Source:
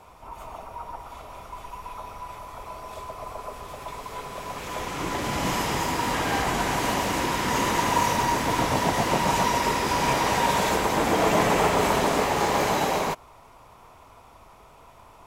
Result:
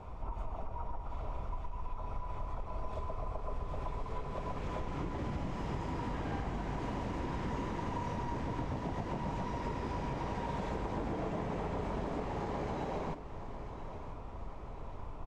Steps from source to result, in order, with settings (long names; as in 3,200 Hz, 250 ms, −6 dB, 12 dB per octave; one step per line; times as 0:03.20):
low-pass filter 7,300 Hz 12 dB per octave
spectral tilt −3.5 dB per octave
downward compressor 16 to 1, threshold −31 dBFS, peak gain reduction 19 dB
repeating echo 992 ms, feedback 55%, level −12.5 dB
level −2.5 dB